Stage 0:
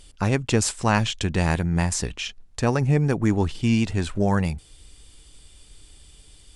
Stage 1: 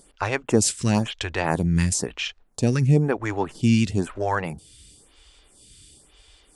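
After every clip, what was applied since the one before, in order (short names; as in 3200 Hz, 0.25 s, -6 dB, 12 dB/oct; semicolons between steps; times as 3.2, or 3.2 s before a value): HPF 76 Hz 6 dB/oct; photocell phaser 1 Hz; gain +4 dB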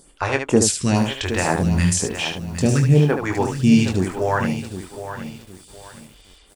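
on a send: early reflections 22 ms -7 dB, 74 ms -6.5 dB; on the sum: lo-fi delay 0.765 s, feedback 35%, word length 7-bit, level -10.5 dB; gain +2 dB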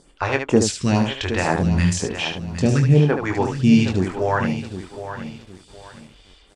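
LPF 5600 Hz 12 dB/oct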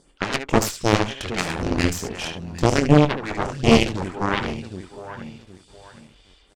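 downsampling 32000 Hz; added harmonics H 4 -6 dB, 7 -11 dB, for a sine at -2.5 dBFS; gain -3.5 dB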